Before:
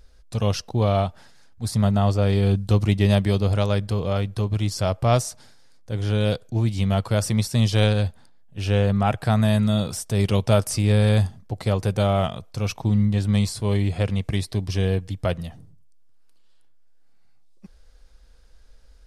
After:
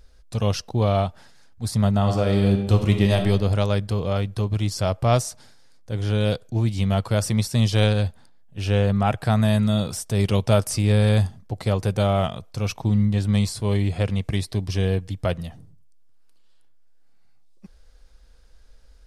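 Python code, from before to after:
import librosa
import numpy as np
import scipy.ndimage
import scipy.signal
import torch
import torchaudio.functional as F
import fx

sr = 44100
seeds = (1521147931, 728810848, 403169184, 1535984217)

y = fx.reverb_throw(x, sr, start_s=1.97, length_s=1.2, rt60_s=1.0, drr_db=5.0)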